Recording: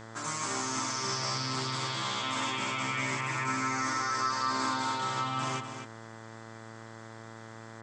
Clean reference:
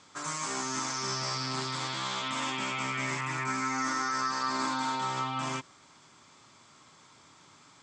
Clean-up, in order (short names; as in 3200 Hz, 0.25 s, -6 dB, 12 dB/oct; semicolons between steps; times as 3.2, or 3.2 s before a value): de-hum 112.2 Hz, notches 18; notch 1500 Hz, Q 30; inverse comb 0.246 s -9 dB